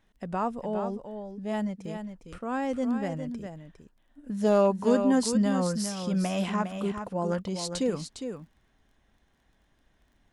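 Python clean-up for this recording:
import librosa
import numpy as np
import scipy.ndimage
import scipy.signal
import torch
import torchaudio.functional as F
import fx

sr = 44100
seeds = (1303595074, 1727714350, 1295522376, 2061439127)

y = fx.fix_declip(x, sr, threshold_db=-13.0)
y = fx.fix_declick_ar(y, sr, threshold=6.5)
y = fx.fix_echo_inverse(y, sr, delay_ms=407, level_db=-8.0)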